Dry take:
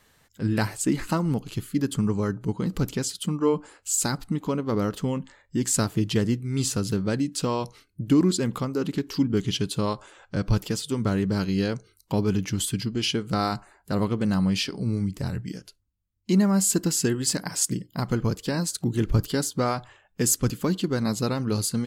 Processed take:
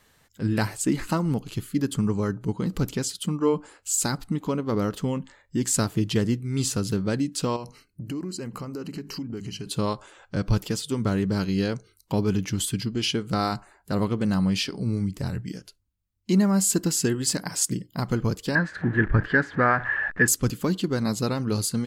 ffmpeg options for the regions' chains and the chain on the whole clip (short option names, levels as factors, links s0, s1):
-filter_complex "[0:a]asettb=1/sr,asplit=3[s0][s1][s2];[s0]atrim=end=7.564[s3];[s1]atrim=start=7.56:end=9.67,asetpts=PTS-STARTPTS,afade=t=in:d=0.004:c=qsin,afade=t=out:st=2.106:d=0.004:c=qsin,bandreject=f=50:t=h:w=6,bandreject=f=100:t=h:w=6,bandreject=f=150:t=h:w=6,bandreject=f=200:t=h:w=6,bandreject=f=250:t=h:w=6,acompressor=threshold=0.0282:ratio=4:attack=3.2:release=140:knee=1:detection=peak,asuperstop=centerf=3500:order=12:qfactor=4.6[s4];[s2]atrim=start=9.666[s5];[s3][s4]acrossfade=d=0.004:c1=hsin:c2=qsin[s6];[s6][s5]acrossfade=d=0.004:c1=qsin:c2=hsin,asettb=1/sr,asplit=3[s7][s8][s9];[s7]atrim=end=18.554[s10];[s8]atrim=start=18.55:end=20.28,asetpts=PTS-STARTPTS,afade=t=in:d=0.004:c=qsin,afade=t=out:st=1.726:d=0.004:c=qsin,aeval=exprs='val(0)+0.5*0.0158*sgn(val(0))':c=same,lowpass=f=1700:t=q:w=12[s11];[s9]atrim=start=20.276[s12];[s10][s11]acrossfade=d=0.004:c1=hsin:c2=qsin[s13];[s13][s12]acrossfade=d=0.004:c1=qsin:c2=hsin"